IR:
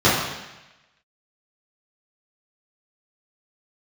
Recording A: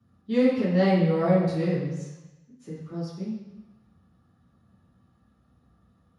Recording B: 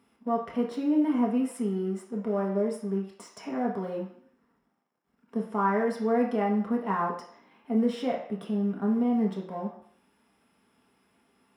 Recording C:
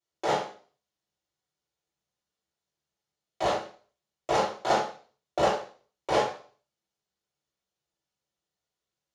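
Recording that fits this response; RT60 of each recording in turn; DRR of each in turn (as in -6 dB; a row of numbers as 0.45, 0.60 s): A; 1.0, 0.60, 0.40 s; -11.0, -2.0, -7.5 dB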